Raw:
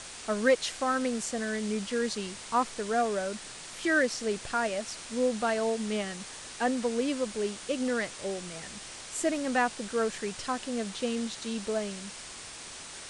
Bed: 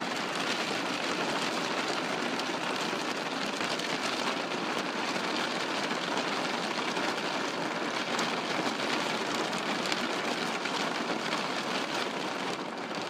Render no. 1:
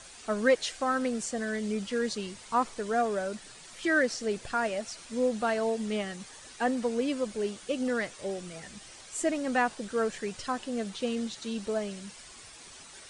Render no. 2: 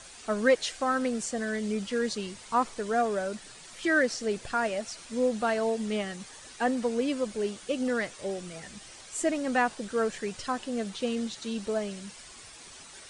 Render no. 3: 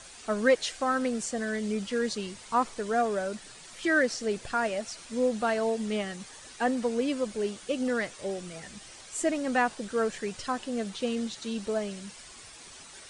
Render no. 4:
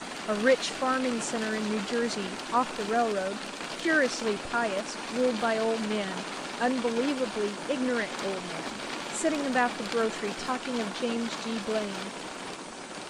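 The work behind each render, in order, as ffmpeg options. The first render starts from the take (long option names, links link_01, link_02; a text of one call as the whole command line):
ffmpeg -i in.wav -af "afftdn=noise_reduction=9:noise_floor=-44" out.wav
ffmpeg -i in.wav -af "volume=1dB" out.wav
ffmpeg -i in.wav -af anull out.wav
ffmpeg -i in.wav -i bed.wav -filter_complex "[1:a]volume=-5.5dB[link_01];[0:a][link_01]amix=inputs=2:normalize=0" out.wav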